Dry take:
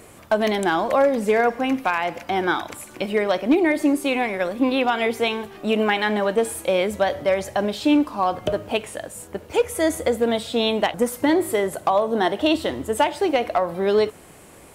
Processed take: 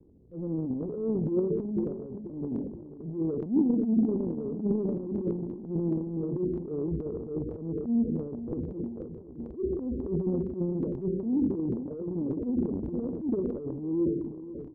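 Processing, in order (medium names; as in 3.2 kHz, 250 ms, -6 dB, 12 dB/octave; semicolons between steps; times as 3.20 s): steep low-pass 530 Hz 48 dB/octave; expander -46 dBFS; FDN reverb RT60 1.2 s, low-frequency decay 1.55×, high-frequency decay 0.65×, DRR 15 dB; pitch shift -4 st; feedback delay 488 ms, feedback 57%, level -14.5 dB; transient shaper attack -12 dB, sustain +12 dB; trim -7.5 dB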